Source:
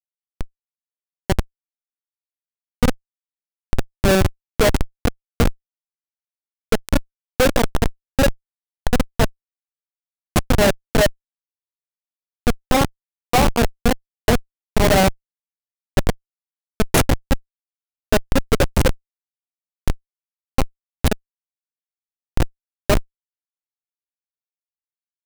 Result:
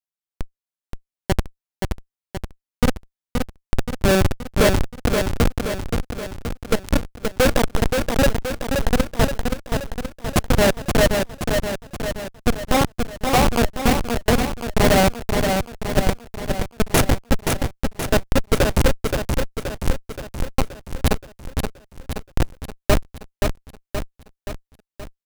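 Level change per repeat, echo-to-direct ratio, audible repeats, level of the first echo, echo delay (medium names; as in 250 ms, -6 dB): -5.0 dB, -3.5 dB, 6, -5.0 dB, 525 ms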